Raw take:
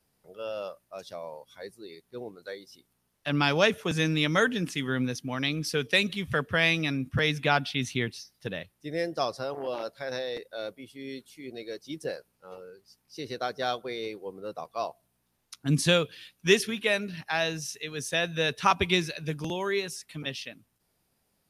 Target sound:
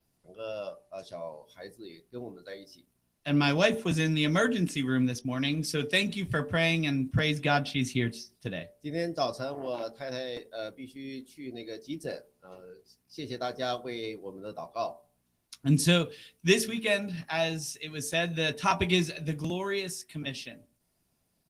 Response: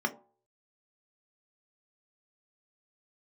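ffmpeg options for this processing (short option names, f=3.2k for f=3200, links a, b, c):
-filter_complex "[0:a]adynamicequalizer=threshold=0.002:dfrequency=8500:dqfactor=2:tfrequency=8500:tqfactor=2:attack=5:release=100:ratio=0.375:range=3:mode=boostabove:tftype=bell,asettb=1/sr,asplit=3[a][b][c];[a]atrim=end=5.194[d];[b]atrim=start=5.19:end=6.46,asetpts=PTS-STARTPTS,afade=t=in:d=0.004:c=qsin,afade=t=out:st=1.266:d=0.004:c=qsin,agate=range=-33dB:threshold=-38dB:ratio=3:detection=peak[e];[c]atrim=start=6.456[f];[d][e]acrossfade=d=0.004:c1=hsin:c2=qsin[g];[g][f]acrossfade=d=0.004:c1=qsin:c2=hsin,asplit=2[h][i];[i]adelay=18,volume=-14dB[j];[h][j]amix=inputs=2:normalize=0,asplit=2[k][l];[1:a]atrim=start_sample=2205,afade=t=out:st=0.4:d=0.01,atrim=end_sample=18081[m];[l][m]afir=irnorm=-1:irlink=0,volume=-13dB[n];[k][n]amix=inputs=2:normalize=0" -ar 48000 -c:a libopus -b:a 20k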